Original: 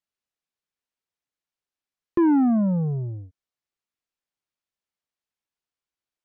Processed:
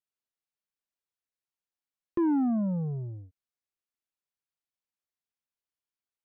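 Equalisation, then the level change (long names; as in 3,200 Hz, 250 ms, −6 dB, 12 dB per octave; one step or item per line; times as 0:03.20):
dynamic equaliser 2,100 Hz, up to −5 dB, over −43 dBFS, Q 1.2
−7.0 dB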